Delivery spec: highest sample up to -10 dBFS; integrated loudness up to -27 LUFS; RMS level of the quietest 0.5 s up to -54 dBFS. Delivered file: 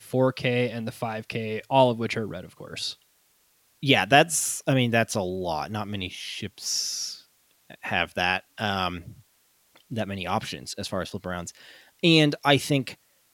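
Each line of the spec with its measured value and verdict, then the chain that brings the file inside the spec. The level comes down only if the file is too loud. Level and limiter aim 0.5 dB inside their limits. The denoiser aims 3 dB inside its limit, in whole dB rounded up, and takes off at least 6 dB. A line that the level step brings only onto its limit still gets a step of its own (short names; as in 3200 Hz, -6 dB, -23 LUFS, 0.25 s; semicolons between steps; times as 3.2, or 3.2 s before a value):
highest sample -3.5 dBFS: fail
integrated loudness -25.5 LUFS: fail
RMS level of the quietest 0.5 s -65 dBFS: OK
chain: gain -2 dB; limiter -10.5 dBFS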